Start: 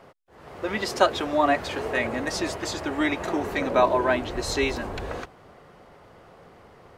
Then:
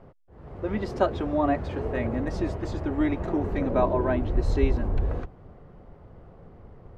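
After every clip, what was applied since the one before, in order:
spectral tilt −4.5 dB per octave
level −6.5 dB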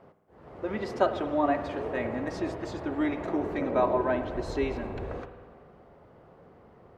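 high-pass filter 340 Hz 6 dB per octave
spring reverb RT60 1.6 s, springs 50 ms, chirp 75 ms, DRR 9 dB

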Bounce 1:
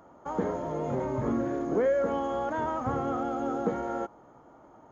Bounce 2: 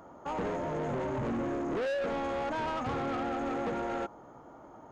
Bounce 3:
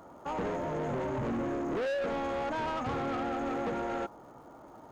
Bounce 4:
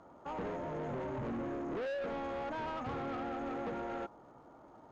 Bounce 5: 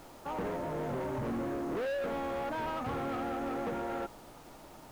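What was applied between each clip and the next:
soft clipping −33 dBFS, distortion −7 dB; level +3 dB
surface crackle 410 per second −58 dBFS
high-frequency loss of the air 75 metres; level −5.5 dB
background noise pink −60 dBFS; level +3.5 dB

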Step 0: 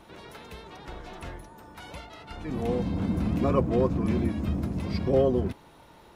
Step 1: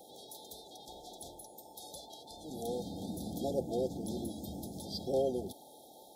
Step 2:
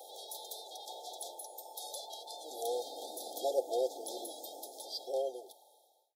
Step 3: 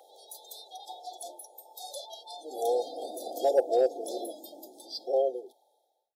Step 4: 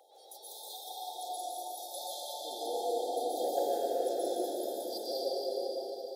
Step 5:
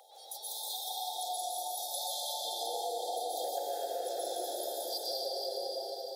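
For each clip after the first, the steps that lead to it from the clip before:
noise in a band 180–1,400 Hz −47 dBFS; brick-wall band-stop 890–3,200 Hz; RIAA equalisation recording; level −5.5 dB
fade-out on the ending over 1.93 s; inverse Chebyshev high-pass filter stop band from 180 Hz, stop band 50 dB; level +5 dB
high-shelf EQ 3,000 Hz −8.5 dB; noise reduction from a noise print of the clip's start 13 dB; in parallel at −5 dB: gain into a clipping stage and back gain 26.5 dB; on the sum: level +5 dB
downward compressor, threshold −31 dBFS, peak gain reduction 12.5 dB; dense smooth reverb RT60 5 s, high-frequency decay 0.85×, pre-delay 105 ms, DRR −9 dB; level −6 dB
high-pass filter 810 Hz 12 dB per octave; downward compressor, threshold −40 dBFS, peak gain reduction 8.5 dB; level +7.5 dB

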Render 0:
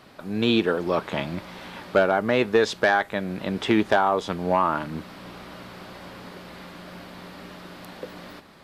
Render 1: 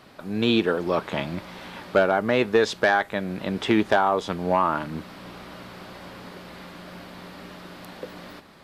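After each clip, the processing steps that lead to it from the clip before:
no processing that can be heard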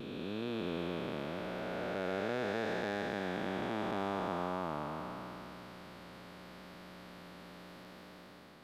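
spectrum smeared in time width 1,030 ms
pitch vibrato 0.78 Hz 23 cents
level −8.5 dB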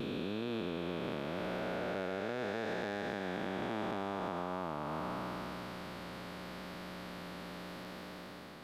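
downward compressor, threshold −40 dBFS, peak gain reduction 9 dB
level +6 dB

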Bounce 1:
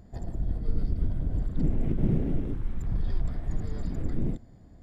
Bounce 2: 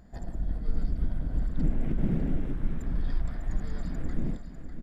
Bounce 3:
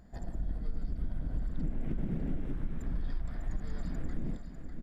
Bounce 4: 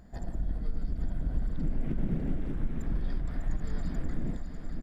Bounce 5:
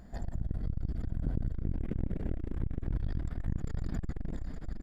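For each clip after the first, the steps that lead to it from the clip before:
graphic EQ with 15 bands 100 Hz −10 dB, 400 Hz −5 dB, 1,600 Hz +5 dB; single-tap delay 599 ms −9.5 dB
downward compressor, threshold −25 dBFS, peak gain reduction 7 dB; level −2.5 dB
single-tap delay 864 ms −9 dB; level +3 dB
saturating transformer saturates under 150 Hz; level +2 dB

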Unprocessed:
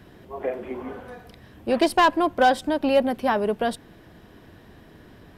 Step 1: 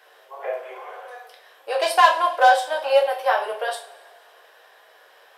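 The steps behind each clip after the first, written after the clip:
inverse Chebyshev high-pass filter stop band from 270 Hz, stop band 40 dB
coupled-rooms reverb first 0.35 s, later 1.8 s, from −20 dB, DRR −1 dB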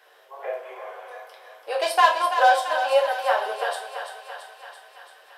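feedback echo with a high-pass in the loop 336 ms, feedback 67%, high-pass 480 Hz, level −8 dB
level −2.5 dB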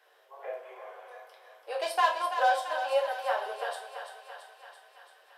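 elliptic high-pass filter 220 Hz
level −7.5 dB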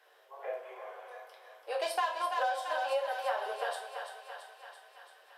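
downward compressor 6 to 1, threshold −28 dBFS, peak gain reduction 9.5 dB

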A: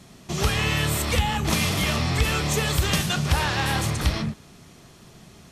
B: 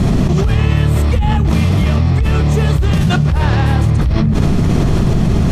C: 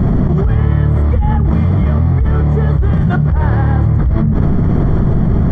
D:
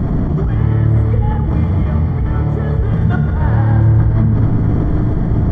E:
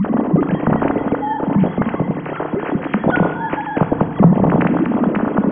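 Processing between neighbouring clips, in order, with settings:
spectral tilt −3.5 dB per octave; envelope flattener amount 100%; level −8.5 dB
Savitzky-Golay smoothing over 41 samples; low-shelf EQ 190 Hz +3 dB; level −1.5 dB
feedback delay network reverb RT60 3.2 s, high-frequency decay 1×, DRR 4 dB; level −4 dB
three sine waves on the formant tracks; feedback delay network reverb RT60 1.5 s, low-frequency decay 1.4×, high-frequency decay 0.85×, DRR 8 dB; level −4 dB

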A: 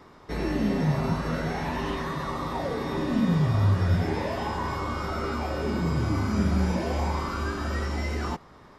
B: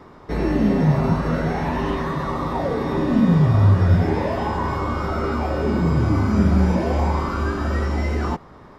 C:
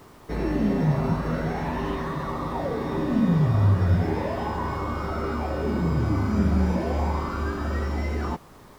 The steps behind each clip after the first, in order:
high-shelf EQ 2,100 Hz −9 dB; level +7.5 dB
background noise pink −51 dBFS; level −5 dB

